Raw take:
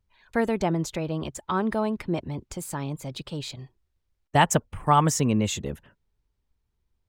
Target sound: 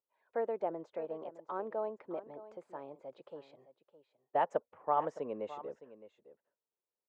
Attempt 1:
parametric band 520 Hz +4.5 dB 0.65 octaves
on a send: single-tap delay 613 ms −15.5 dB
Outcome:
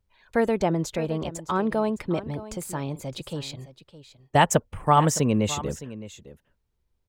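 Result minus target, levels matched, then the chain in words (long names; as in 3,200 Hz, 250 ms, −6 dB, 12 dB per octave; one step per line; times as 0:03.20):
500 Hz band −2.5 dB
four-pole ladder band-pass 680 Hz, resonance 25%
parametric band 520 Hz +4.5 dB 0.65 octaves
on a send: single-tap delay 613 ms −15.5 dB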